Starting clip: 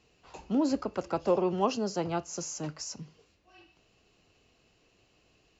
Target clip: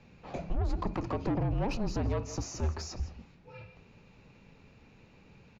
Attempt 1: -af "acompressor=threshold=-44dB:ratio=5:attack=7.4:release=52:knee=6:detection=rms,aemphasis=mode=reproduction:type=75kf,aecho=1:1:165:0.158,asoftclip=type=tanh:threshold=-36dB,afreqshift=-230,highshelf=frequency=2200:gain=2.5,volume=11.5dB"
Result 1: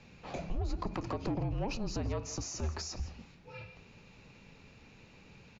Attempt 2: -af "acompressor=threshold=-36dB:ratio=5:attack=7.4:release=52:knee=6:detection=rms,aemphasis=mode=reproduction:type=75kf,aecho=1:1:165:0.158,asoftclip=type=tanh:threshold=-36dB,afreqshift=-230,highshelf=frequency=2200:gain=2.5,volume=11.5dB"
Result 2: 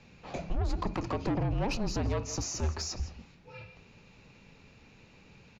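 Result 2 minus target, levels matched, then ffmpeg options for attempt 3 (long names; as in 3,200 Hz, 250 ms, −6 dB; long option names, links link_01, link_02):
4,000 Hz band +5.5 dB
-af "acompressor=threshold=-36dB:ratio=5:attack=7.4:release=52:knee=6:detection=rms,aemphasis=mode=reproduction:type=75kf,aecho=1:1:165:0.158,asoftclip=type=tanh:threshold=-36dB,afreqshift=-230,highshelf=frequency=2200:gain=-5,volume=11.5dB"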